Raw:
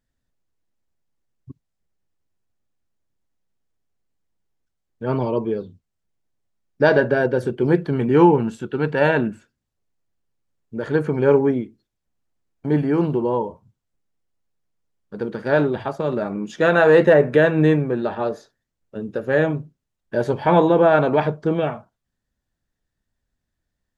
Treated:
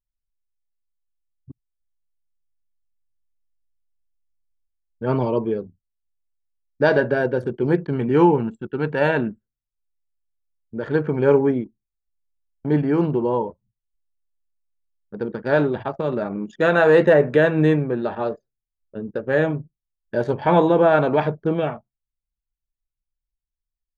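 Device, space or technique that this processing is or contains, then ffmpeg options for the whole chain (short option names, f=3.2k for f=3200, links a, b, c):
voice memo with heavy noise removal: -af "anlmdn=3.98,dynaudnorm=f=930:g=5:m=7dB,volume=-3dB"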